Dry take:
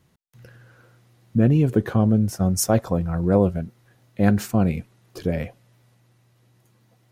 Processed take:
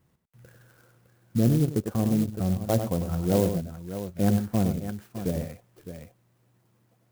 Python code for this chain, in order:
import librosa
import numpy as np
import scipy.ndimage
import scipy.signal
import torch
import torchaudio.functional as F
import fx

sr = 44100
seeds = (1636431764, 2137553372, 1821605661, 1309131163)

p1 = scipy.signal.sosfilt(scipy.signal.butter(2, 6500.0, 'lowpass', fs=sr, output='sos'), x)
p2 = p1 + fx.echo_multitap(p1, sr, ms=(97, 610), db=(-8.0, -11.5), dry=0)
p3 = fx.transient(p2, sr, attack_db=-4, sustain_db=-8, at=(1.57, 2.64))
p4 = fx.env_lowpass_down(p3, sr, base_hz=1100.0, full_db=-18.5)
p5 = fx.clock_jitter(p4, sr, seeds[0], jitter_ms=0.066)
y = p5 * 10.0 ** (-5.0 / 20.0)